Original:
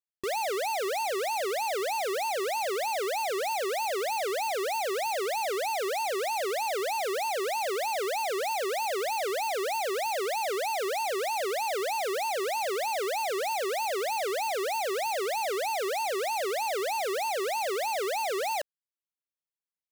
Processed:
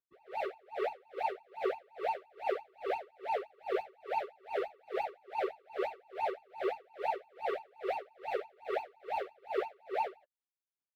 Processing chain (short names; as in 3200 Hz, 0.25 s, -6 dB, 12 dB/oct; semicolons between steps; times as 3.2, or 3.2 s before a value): plain phase-vocoder stretch 0.55×; air absorption 490 m; dB-linear tremolo 2.4 Hz, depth 34 dB; gain +5 dB